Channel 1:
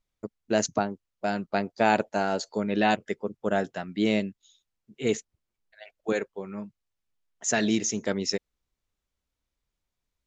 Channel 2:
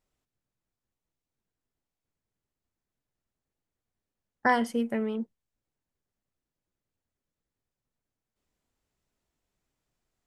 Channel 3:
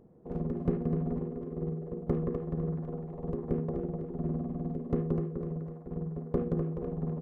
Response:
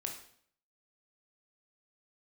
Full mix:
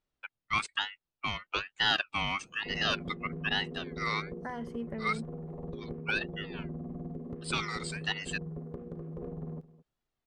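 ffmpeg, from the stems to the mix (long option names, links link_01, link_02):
-filter_complex "[0:a]bandpass=frequency=1200:width_type=q:width=0.63:csg=0,aecho=1:1:2:0.85,aeval=exprs='val(0)*sin(2*PI*2000*n/s+2000*0.2/1.1*sin(2*PI*1.1*n/s))':channel_layout=same,volume=-1.5dB[link_01];[1:a]aemphasis=mode=reproduction:type=75kf,volume=-5dB[link_02];[2:a]acompressor=threshold=-35dB:ratio=6,adelay=2400,volume=-1dB,asplit=2[link_03][link_04];[link_04]volume=-18.5dB[link_05];[link_02][link_03]amix=inputs=2:normalize=0,alimiter=level_in=4.5dB:limit=-24dB:level=0:latency=1:release=298,volume=-4.5dB,volume=0dB[link_06];[link_05]aecho=0:1:214:1[link_07];[link_01][link_06][link_07]amix=inputs=3:normalize=0"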